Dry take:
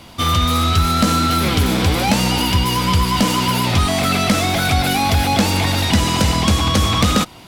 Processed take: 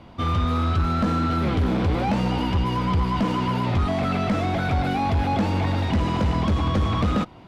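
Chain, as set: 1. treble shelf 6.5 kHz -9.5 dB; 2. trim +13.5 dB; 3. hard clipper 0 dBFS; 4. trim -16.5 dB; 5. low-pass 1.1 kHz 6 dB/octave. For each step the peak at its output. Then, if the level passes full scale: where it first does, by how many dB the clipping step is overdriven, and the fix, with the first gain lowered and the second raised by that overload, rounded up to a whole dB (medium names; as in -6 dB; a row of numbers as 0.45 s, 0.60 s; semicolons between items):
-6.5 dBFS, +7.0 dBFS, 0.0 dBFS, -16.5 dBFS, -16.5 dBFS; step 2, 7.0 dB; step 2 +6.5 dB, step 4 -9.5 dB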